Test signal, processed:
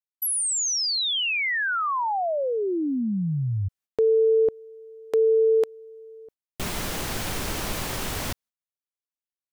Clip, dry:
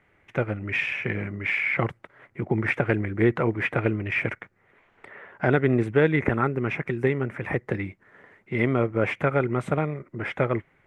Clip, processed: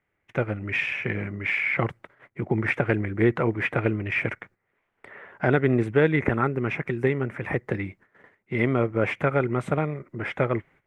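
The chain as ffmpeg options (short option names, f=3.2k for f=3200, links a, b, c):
-af "agate=range=-14dB:threshold=-51dB:ratio=16:detection=peak"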